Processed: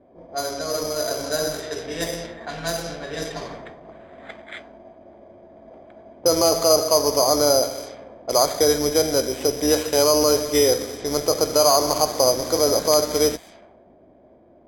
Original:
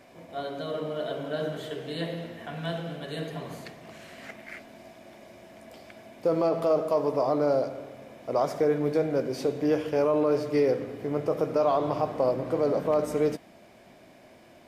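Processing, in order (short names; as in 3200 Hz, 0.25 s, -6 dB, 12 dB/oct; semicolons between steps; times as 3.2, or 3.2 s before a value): octaver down 2 oct, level -5 dB; careless resampling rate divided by 8×, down filtered, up hold; tone controls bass -9 dB, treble +6 dB; low-pass opened by the level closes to 360 Hz, open at -30 dBFS; bell 3800 Hz +5.5 dB 2.7 oct; gain +6 dB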